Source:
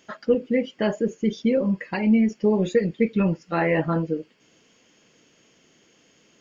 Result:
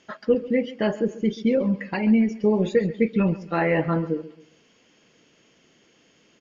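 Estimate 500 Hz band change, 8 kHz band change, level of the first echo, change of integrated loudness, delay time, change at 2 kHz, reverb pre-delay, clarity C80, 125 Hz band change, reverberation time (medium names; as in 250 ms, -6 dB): 0.0 dB, no reading, -17.0 dB, 0.0 dB, 136 ms, 0.0 dB, no reverb, no reverb, 0.0 dB, no reverb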